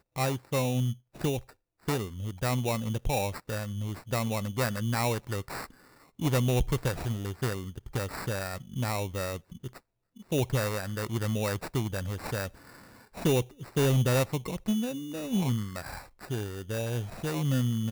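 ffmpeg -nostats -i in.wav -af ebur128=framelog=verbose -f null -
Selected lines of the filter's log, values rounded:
Integrated loudness:
  I:         -31.0 LUFS
  Threshold: -41.4 LUFS
Loudness range:
  LRA:         3.9 LU
  Threshold: -51.5 LUFS
  LRA low:   -33.3 LUFS
  LRA high:  -29.4 LUFS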